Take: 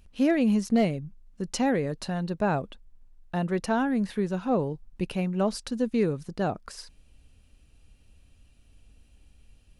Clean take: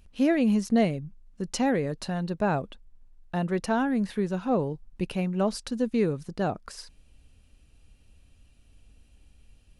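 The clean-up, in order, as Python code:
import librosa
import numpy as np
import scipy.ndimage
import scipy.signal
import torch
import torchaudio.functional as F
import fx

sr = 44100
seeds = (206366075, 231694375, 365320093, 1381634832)

y = fx.fix_declip(x, sr, threshold_db=-15.0)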